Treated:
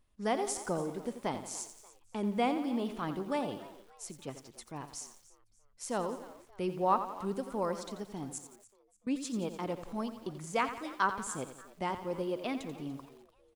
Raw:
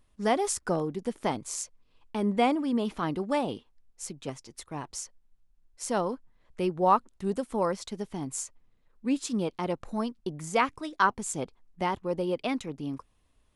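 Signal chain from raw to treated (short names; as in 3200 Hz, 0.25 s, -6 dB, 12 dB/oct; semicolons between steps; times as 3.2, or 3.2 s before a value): 8.38–9.07 passive tone stack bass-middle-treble 6-0-2; frequency-shifting echo 0.292 s, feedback 38%, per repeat +98 Hz, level -19 dB; lo-fi delay 87 ms, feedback 55%, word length 8-bit, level -10.5 dB; gain -6 dB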